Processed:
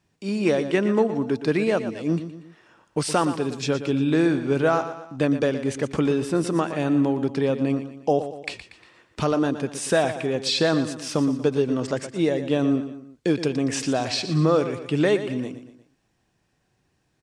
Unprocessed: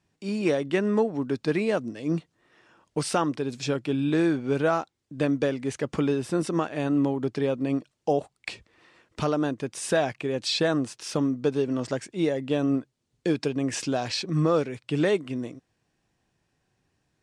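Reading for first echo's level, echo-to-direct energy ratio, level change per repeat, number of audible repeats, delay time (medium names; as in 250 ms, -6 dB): -11.5 dB, -10.5 dB, -6.5 dB, 3, 118 ms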